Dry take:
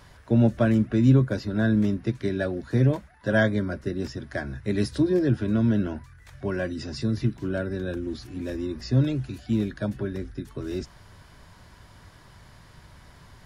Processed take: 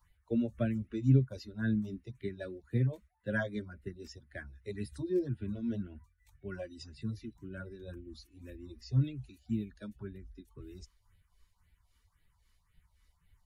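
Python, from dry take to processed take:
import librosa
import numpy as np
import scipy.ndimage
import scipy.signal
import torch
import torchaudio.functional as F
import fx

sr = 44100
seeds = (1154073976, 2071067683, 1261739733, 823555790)

y = fx.bin_expand(x, sr, power=1.5)
y = fx.tremolo_shape(y, sr, shape='triangle', hz=3.7, depth_pct=55)
y = fx.phaser_stages(y, sr, stages=4, low_hz=120.0, high_hz=1100.0, hz=1.9, feedback_pct=5)
y = F.gain(torch.from_numpy(y), -4.0).numpy()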